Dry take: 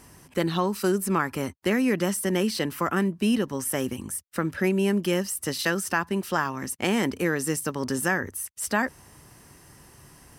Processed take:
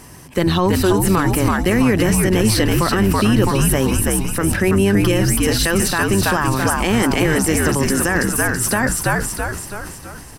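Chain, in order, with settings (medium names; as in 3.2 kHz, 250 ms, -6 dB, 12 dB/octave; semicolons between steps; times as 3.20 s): octave divider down 1 oct, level -6 dB; band-stop 1.4 kHz, Q 25; frequency-shifting echo 329 ms, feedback 51%, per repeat -74 Hz, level -4 dB; loudness maximiser +15.5 dB; decay stretcher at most 50 dB/s; trim -5.5 dB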